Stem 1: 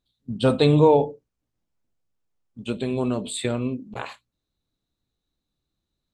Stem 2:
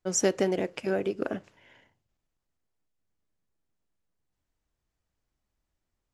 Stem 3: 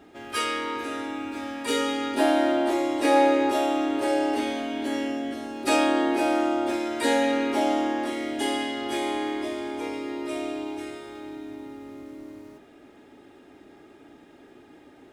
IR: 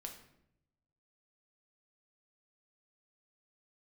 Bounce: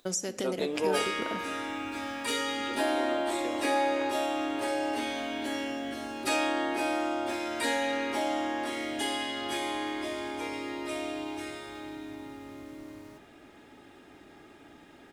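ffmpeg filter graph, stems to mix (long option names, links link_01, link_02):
-filter_complex "[0:a]highpass=frequency=280:width=0.5412,highpass=frequency=280:width=1.3066,acompressor=mode=upward:threshold=-30dB:ratio=2.5,volume=-13dB[link_01];[1:a]aemphasis=mode=production:type=75kf,acompressor=threshold=-27dB:ratio=6,volume=1dB,asplit=2[link_02][link_03];[link_03]volume=-9.5dB[link_04];[2:a]equalizer=frequency=370:width=0.71:gain=-6.5,adelay=600,volume=0dB,asplit=2[link_05][link_06];[link_06]volume=-5dB[link_07];[link_02][link_05]amix=inputs=2:normalize=0,acompressor=threshold=-34dB:ratio=3,volume=0dB[link_08];[3:a]atrim=start_sample=2205[link_09];[link_04][link_07]amix=inputs=2:normalize=0[link_10];[link_10][link_09]afir=irnorm=-1:irlink=0[link_11];[link_01][link_08][link_11]amix=inputs=3:normalize=0"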